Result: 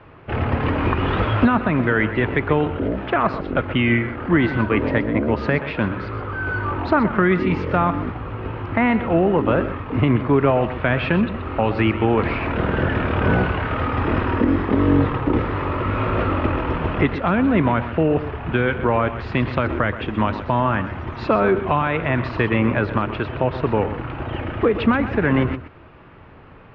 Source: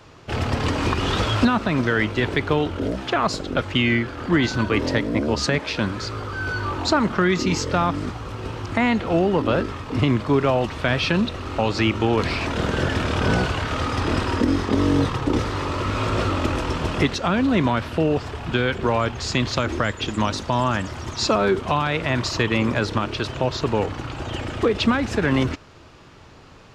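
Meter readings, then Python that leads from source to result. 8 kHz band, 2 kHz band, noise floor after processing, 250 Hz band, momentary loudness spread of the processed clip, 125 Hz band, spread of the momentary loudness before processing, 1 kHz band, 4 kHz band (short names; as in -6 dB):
under -30 dB, +1.5 dB, -43 dBFS, +2.0 dB, 7 LU, +2.5 dB, 6 LU, +2.0 dB, -8.5 dB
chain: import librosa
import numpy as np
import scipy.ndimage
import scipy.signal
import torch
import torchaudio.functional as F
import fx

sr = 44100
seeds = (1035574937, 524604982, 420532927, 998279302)

p1 = scipy.signal.sosfilt(scipy.signal.butter(4, 2500.0, 'lowpass', fs=sr, output='sos'), x)
p2 = p1 + fx.echo_single(p1, sr, ms=126, db=-12.5, dry=0)
y = F.gain(torch.from_numpy(p2), 2.0).numpy()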